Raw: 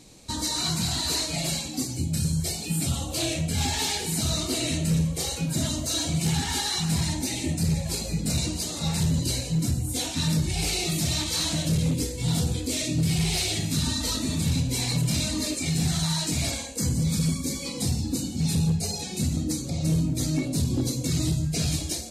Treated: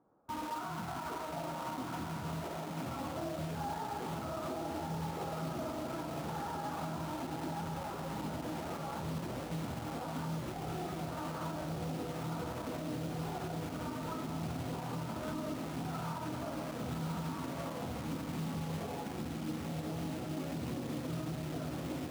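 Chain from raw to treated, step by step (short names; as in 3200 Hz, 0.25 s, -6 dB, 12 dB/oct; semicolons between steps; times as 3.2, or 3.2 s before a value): Chebyshev low-pass 1400 Hz, order 5; on a send: diffused feedback echo 1.137 s, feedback 42%, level -3 dB; on the sum: digital reverb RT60 1.4 s, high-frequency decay 0.7×, pre-delay 0.105 s, DRR 11 dB; in parallel at -9.5 dB: bit-crush 6-bit; on the sum: HPF 1100 Hz 6 dB/oct; limiter -33 dBFS, peak gain reduction 9 dB; upward expander 1.5:1, over -58 dBFS; gain +4 dB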